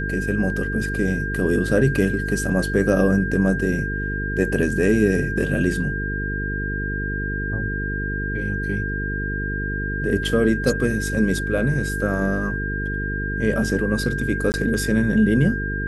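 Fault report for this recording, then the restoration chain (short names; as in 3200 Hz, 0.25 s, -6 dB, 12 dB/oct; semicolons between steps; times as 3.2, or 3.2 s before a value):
buzz 50 Hz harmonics 9 -27 dBFS
tone 1600 Hz -27 dBFS
14.52–14.54 gap 19 ms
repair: notch 1600 Hz, Q 30; de-hum 50 Hz, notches 9; interpolate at 14.52, 19 ms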